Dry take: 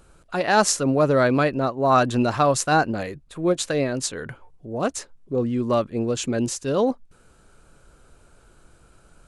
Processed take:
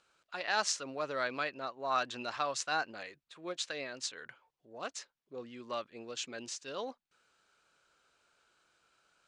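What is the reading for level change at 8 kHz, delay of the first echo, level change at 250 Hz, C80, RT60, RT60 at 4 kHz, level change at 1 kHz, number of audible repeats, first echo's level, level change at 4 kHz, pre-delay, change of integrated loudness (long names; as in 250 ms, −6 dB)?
−12.5 dB, no echo audible, −24.5 dB, no reverb audible, no reverb audible, no reverb audible, −14.0 dB, no echo audible, no echo audible, −7.5 dB, no reverb audible, −15.0 dB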